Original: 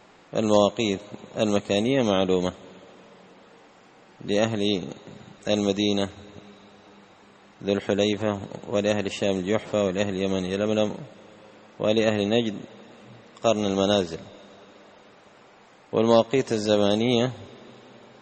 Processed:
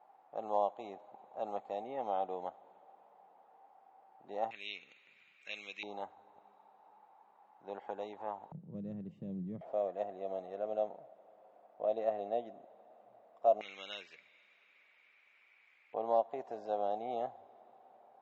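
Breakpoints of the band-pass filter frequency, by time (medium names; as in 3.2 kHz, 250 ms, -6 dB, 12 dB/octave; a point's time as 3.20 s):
band-pass filter, Q 8.3
790 Hz
from 4.51 s 2.4 kHz
from 5.83 s 840 Hz
from 8.52 s 160 Hz
from 9.61 s 690 Hz
from 13.61 s 2.3 kHz
from 15.94 s 740 Hz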